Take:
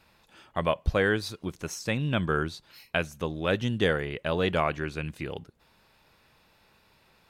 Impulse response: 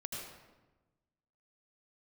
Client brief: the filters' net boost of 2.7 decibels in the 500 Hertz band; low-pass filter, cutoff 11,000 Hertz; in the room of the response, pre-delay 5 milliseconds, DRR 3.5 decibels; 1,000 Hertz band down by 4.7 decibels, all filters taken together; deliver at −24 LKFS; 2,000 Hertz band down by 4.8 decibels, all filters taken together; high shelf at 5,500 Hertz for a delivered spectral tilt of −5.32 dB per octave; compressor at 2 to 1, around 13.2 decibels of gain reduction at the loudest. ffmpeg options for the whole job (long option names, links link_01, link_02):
-filter_complex "[0:a]lowpass=11000,equalizer=frequency=500:width_type=o:gain=5,equalizer=frequency=1000:width_type=o:gain=-7,equalizer=frequency=2000:width_type=o:gain=-5,highshelf=frequency=5500:gain=7,acompressor=threshold=-44dB:ratio=2,asplit=2[link_01][link_02];[1:a]atrim=start_sample=2205,adelay=5[link_03];[link_02][link_03]afir=irnorm=-1:irlink=0,volume=-3.5dB[link_04];[link_01][link_04]amix=inputs=2:normalize=0,volume=14dB"